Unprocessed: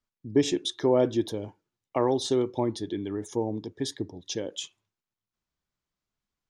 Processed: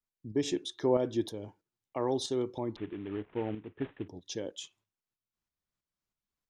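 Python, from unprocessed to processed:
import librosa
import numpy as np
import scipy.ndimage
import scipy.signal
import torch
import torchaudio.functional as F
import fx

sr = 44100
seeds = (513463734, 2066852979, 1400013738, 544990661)

y = fx.cvsd(x, sr, bps=16000, at=(2.76, 4.08))
y = fx.tremolo_shape(y, sr, shape='saw_up', hz=3.1, depth_pct=55)
y = F.gain(torch.from_numpy(y), -3.0).numpy()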